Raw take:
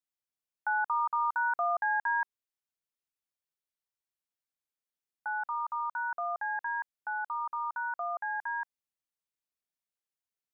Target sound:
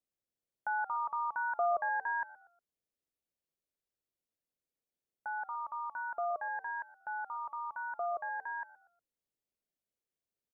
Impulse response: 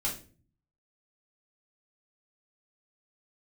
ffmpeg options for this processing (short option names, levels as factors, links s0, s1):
-filter_complex "[0:a]lowshelf=f=730:t=q:w=1.5:g=9,asplit=4[s0][s1][s2][s3];[s1]adelay=120,afreqshift=-82,volume=0.112[s4];[s2]adelay=240,afreqshift=-164,volume=0.038[s5];[s3]adelay=360,afreqshift=-246,volume=0.013[s6];[s0][s4][s5][s6]amix=inputs=4:normalize=0,volume=0.631"